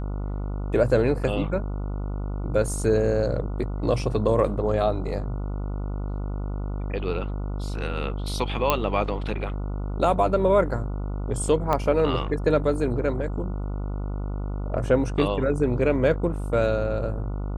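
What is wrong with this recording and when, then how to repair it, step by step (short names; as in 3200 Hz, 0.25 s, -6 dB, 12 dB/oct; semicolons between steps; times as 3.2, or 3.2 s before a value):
buzz 50 Hz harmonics 29 -29 dBFS
8.7 pop -5 dBFS
11.73 pop -11 dBFS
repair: de-click; de-hum 50 Hz, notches 29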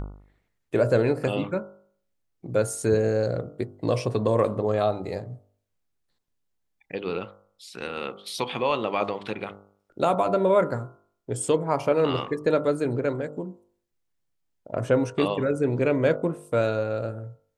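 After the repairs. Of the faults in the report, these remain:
8.7 pop
11.73 pop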